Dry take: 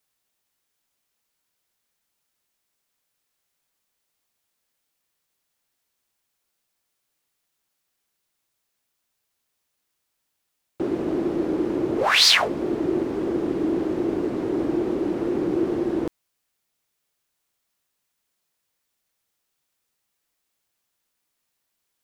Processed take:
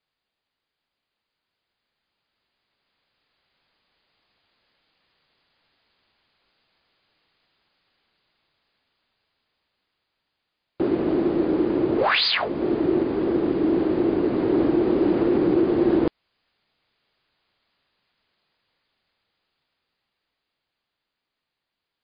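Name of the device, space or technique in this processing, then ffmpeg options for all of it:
low-bitrate web radio: -af "dynaudnorm=framelen=200:gausssize=31:maxgain=14dB,alimiter=limit=-10.5dB:level=0:latency=1:release=304" -ar 11025 -c:a libmp3lame -b:a 48k

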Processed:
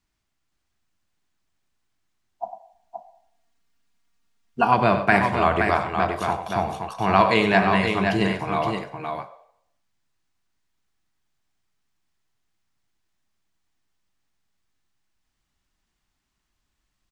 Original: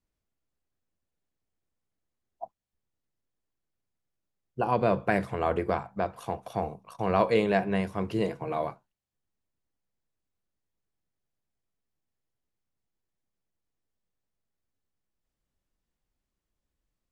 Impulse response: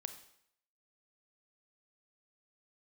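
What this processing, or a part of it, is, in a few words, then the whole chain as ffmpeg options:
filtered reverb send: -filter_complex "[0:a]asplit=3[link_01][link_02][link_03];[link_01]afade=type=out:start_time=2.43:duration=0.02[link_04];[link_02]aecho=1:1:4.3:1,afade=type=in:start_time=2.43:duration=0.02,afade=type=out:start_time=4.67:duration=0.02[link_05];[link_03]afade=type=in:start_time=4.67:duration=0.02[link_06];[link_04][link_05][link_06]amix=inputs=3:normalize=0,asplit=2[link_07][link_08];[link_08]highpass=frequency=510:width=0.5412,highpass=frequency=510:width=1.3066,lowpass=8700[link_09];[1:a]atrim=start_sample=2205[link_10];[link_09][link_10]afir=irnorm=-1:irlink=0,volume=4dB[link_11];[link_07][link_11]amix=inputs=2:normalize=0,aecho=1:1:96|521:0.299|0.531,volume=5dB"

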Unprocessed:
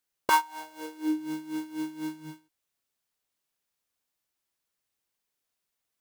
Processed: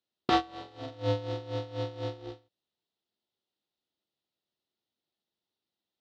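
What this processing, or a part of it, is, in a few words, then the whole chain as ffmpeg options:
ring modulator pedal into a guitar cabinet: -af "aeval=exprs='val(0)*sgn(sin(2*PI*200*n/s))':channel_layout=same,highpass=82,equalizer=frequency=210:width_type=q:width=4:gain=4,equalizer=frequency=350:width_type=q:width=4:gain=7,equalizer=frequency=1100:width_type=q:width=4:gain=-8,equalizer=frequency=1600:width_type=q:width=4:gain=-9,equalizer=frequency=2300:width_type=q:width=4:gain=-10,equalizer=frequency=3800:width_type=q:width=4:gain=4,lowpass=frequency=4300:width=0.5412,lowpass=frequency=4300:width=1.3066"

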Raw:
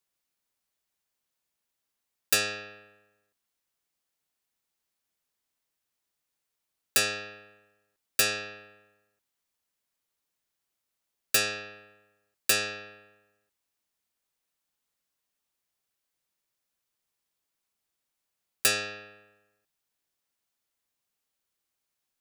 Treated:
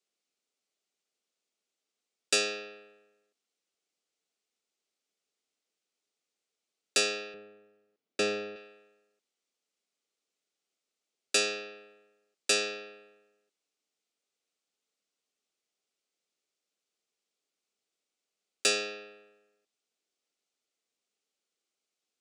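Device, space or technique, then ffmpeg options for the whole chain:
television speaker: -filter_complex "[0:a]highpass=frequency=200:width=0.5412,highpass=frequency=200:width=1.3066,equalizer=frequency=430:width_type=q:width=4:gain=6,equalizer=frequency=970:width_type=q:width=4:gain=-9,equalizer=frequency=1700:width_type=q:width=4:gain=-7,lowpass=frequency=8200:width=0.5412,lowpass=frequency=8200:width=1.3066,asettb=1/sr,asplit=3[link_01][link_02][link_03];[link_01]atrim=end=7.344[link_04];[link_02]atrim=start=7.34:end=8.56,asetpts=PTS-STARTPTS,afade=type=in:duration=0.004:curve=qsin,afade=type=out:start_time=1.216:duration=0.004:curve=qsin,aemphasis=mode=reproduction:type=riaa[link_05];[link_03]atrim=start=8.556[link_06];[link_04][link_05]acrossfade=duration=0.004:curve1=hsin:curve2=qsin[link_07];[link_07][link_06]acrossfade=duration=0.004:curve1=qsin:curve2=hsin"

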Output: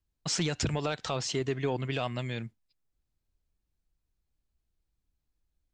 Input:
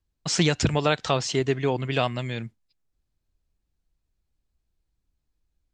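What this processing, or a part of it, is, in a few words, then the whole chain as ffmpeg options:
soft clipper into limiter: -af "asoftclip=type=tanh:threshold=-9dB,alimiter=limit=-16dB:level=0:latency=1:release=56,volume=-4dB"

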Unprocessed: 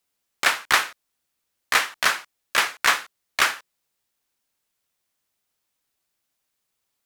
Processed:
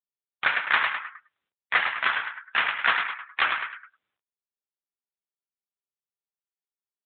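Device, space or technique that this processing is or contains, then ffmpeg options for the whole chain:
mobile call with aggressive noise cancelling: -filter_complex "[0:a]asettb=1/sr,asplit=3[link_01][link_02][link_03];[link_01]atrim=end=0.844[link_04];[link_02]atrim=start=0.84:end=2.11,asetpts=PTS-STARTPTS,afade=type=in:duration=0.004:curve=qsin,afade=type=out:start_time=1.266:duration=0.004:curve=qsin,lowpass=frequency=6300:width=0.5412,lowpass=frequency=6300:width=1.3066[link_05];[link_03]atrim=start=2.106[link_06];[link_04][link_05]acrossfade=duration=0.004:curve1=hsin:curve2=qsin[link_07];[link_07][link_06]acrossfade=duration=0.004:curve1=qsin:curve2=hsin,highpass=120,aecho=1:1:104|208|312|416|520|624:0.562|0.287|0.146|0.0746|0.038|0.0194,afftdn=noise_reduction=30:noise_floor=-33" -ar 8000 -c:a libopencore_amrnb -b:a 7950

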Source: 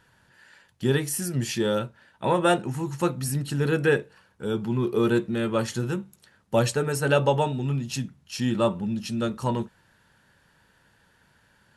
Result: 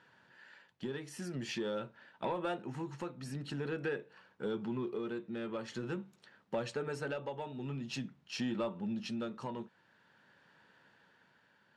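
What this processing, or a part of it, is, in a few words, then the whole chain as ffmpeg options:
AM radio: -af "highpass=190,lowpass=4100,acompressor=threshold=-30dB:ratio=5,asoftclip=type=tanh:threshold=-23dB,tremolo=f=0.47:d=0.4,volume=-2dB"

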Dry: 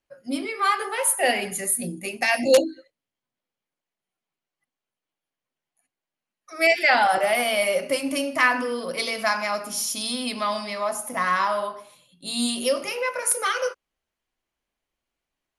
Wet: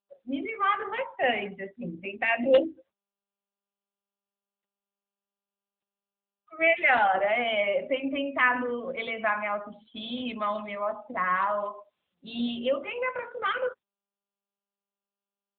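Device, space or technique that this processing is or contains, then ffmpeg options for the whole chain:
mobile call with aggressive noise cancelling: -af "highpass=frequency=150:width=0.5412,highpass=frequency=150:width=1.3066,afftdn=noise_reduction=24:noise_floor=-35,volume=-3dB" -ar 8000 -c:a libopencore_amrnb -b:a 10200

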